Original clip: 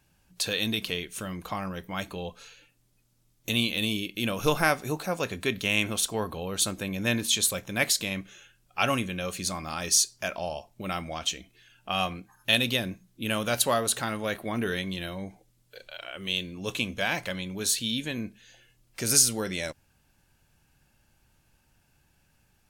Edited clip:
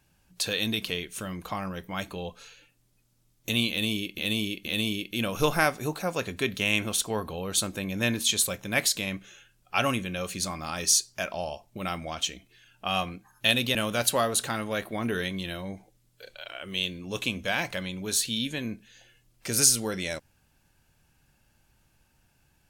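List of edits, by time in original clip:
3.70–4.18 s: loop, 3 plays
12.79–13.28 s: delete

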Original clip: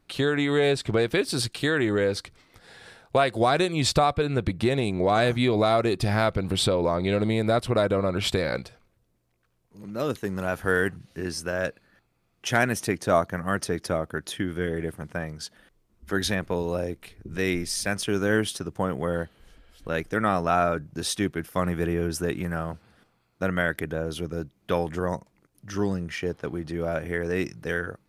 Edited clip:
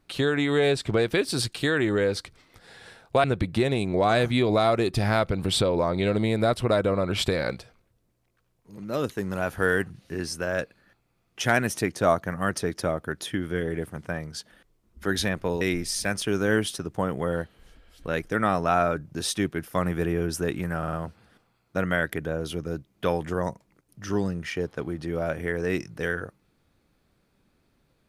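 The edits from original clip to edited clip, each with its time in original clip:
3.24–4.30 s: delete
16.67–17.42 s: delete
22.59 s: stutter 0.05 s, 4 plays

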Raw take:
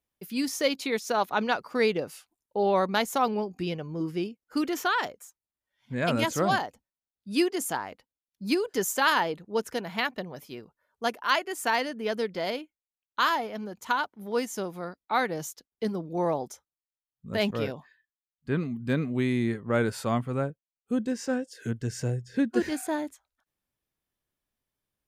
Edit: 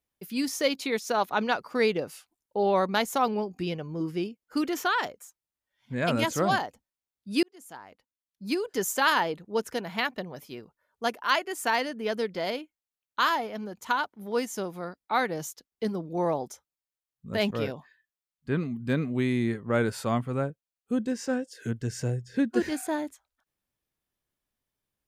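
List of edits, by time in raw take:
7.43–8.96 s: fade in

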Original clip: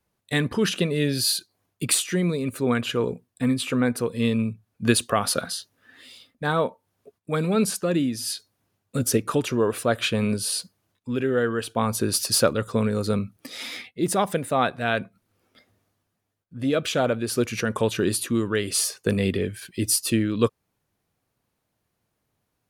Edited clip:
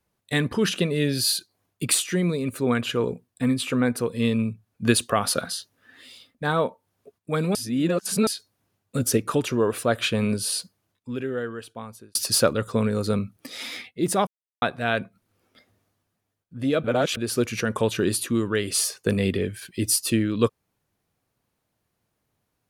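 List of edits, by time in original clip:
7.55–8.27 s: reverse
10.53–12.15 s: fade out
14.27–14.62 s: mute
16.84–17.17 s: reverse

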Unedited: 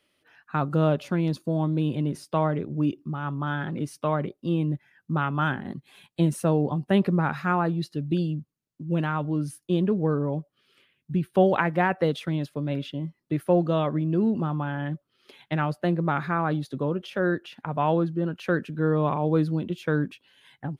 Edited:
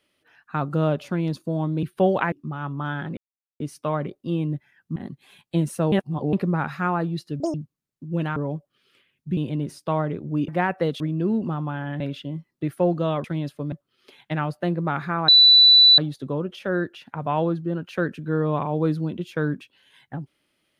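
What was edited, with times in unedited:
1.83–2.94 s: swap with 11.20–11.69 s
3.79 s: insert silence 0.43 s
5.15–5.61 s: delete
6.57–6.98 s: reverse
8.05–8.32 s: speed 191%
9.14–10.19 s: delete
12.21–12.69 s: swap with 13.93–14.93 s
16.49 s: add tone 3.97 kHz -9 dBFS 0.70 s

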